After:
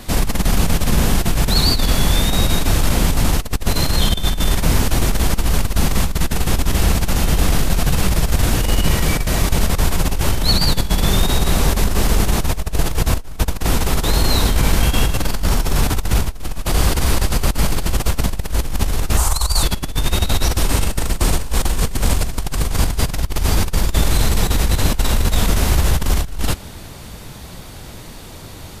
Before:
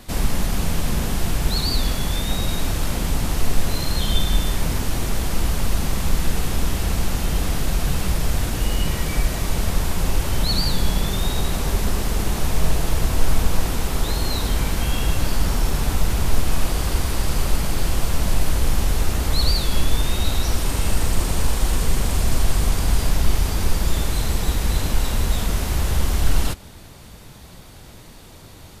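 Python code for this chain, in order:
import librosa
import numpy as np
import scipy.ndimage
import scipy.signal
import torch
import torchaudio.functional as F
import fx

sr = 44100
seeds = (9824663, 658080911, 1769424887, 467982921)

y = fx.graphic_eq_10(x, sr, hz=(125, 250, 500, 1000, 2000, 4000, 8000), db=(-8, -12, -6, 8, -7, -5, 10), at=(19.17, 19.63))
y = fx.over_compress(y, sr, threshold_db=-19.0, ratio=-0.5)
y = y * librosa.db_to_amplitude(5.0)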